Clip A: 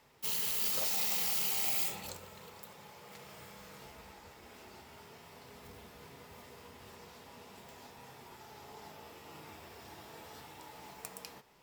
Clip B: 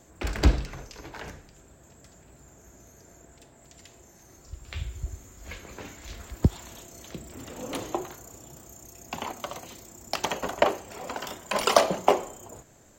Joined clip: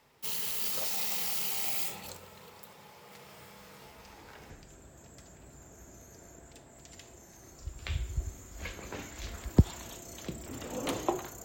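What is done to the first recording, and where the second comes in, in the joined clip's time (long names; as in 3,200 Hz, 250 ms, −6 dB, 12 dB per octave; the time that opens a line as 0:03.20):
clip A
0:04.00: mix in clip B from 0:00.86 0.50 s −13 dB
0:04.50: continue with clip B from 0:01.36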